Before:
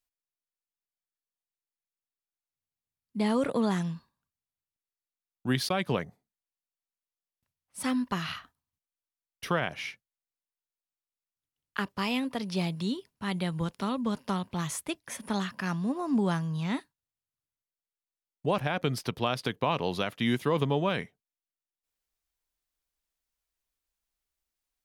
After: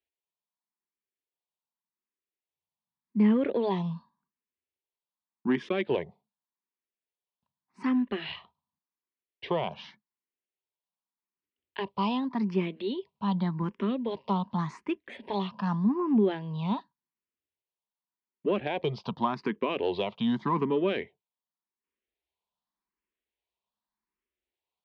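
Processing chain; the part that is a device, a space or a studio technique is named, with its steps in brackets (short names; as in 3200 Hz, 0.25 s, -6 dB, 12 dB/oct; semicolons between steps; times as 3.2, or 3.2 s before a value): barber-pole phaser into a guitar amplifier (endless phaser +0.86 Hz; soft clip -21.5 dBFS, distortion -21 dB; speaker cabinet 83–3800 Hz, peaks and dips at 110 Hz -10 dB, 210 Hz +8 dB, 380 Hz +8 dB, 970 Hz +9 dB, 1400 Hz -6 dB); gain +1.5 dB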